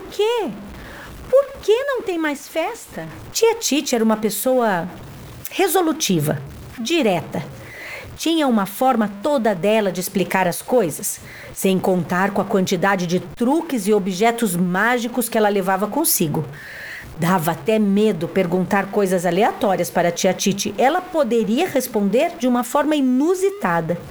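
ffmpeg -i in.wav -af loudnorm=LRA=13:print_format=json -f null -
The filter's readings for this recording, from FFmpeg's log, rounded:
"input_i" : "-19.2",
"input_tp" : "-1.8",
"input_lra" : "1.9",
"input_thresh" : "-29.6",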